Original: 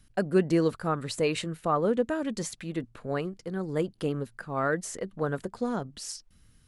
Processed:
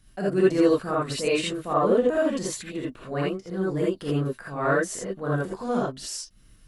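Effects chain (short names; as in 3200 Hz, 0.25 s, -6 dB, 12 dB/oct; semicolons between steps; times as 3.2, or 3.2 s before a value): transient shaper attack -8 dB, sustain -4 dB; non-linear reverb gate 0.1 s rising, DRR -6 dB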